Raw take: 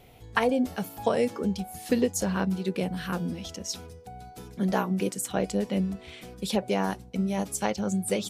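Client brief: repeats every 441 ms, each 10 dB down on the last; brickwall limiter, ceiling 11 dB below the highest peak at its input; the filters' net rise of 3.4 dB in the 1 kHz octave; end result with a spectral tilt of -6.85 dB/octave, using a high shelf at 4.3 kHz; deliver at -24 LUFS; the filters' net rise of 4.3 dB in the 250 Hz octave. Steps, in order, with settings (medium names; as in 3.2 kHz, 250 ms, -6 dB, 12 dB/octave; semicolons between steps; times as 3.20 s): peaking EQ 250 Hz +5.5 dB; peaking EQ 1 kHz +4.5 dB; treble shelf 4.3 kHz -9 dB; peak limiter -18.5 dBFS; feedback delay 441 ms, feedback 32%, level -10 dB; trim +5 dB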